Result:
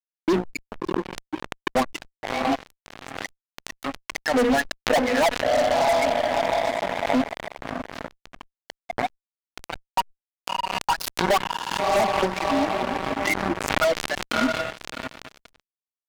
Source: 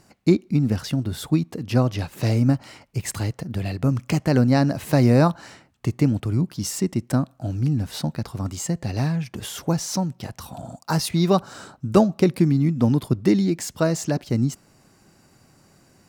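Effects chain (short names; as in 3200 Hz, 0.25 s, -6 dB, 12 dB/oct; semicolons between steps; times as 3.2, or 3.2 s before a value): per-bin expansion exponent 2; wah 2.2 Hz 480–2300 Hz, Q 9.4; rippled Chebyshev high-pass 180 Hz, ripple 9 dB; on a send: diffused feedback echo 0.654 s, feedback 49%, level -8.5 dB; on the sum: dynamic EQ 1300 Hz, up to -7 dB, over -57 dBFS, Q 0.86; notches 60/120/180/240/300/360/420/480/540 Hz; fuzz box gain 55 dB, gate -59 dBFS; backwards sustainer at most 49 dB/s; gain -3.5 dB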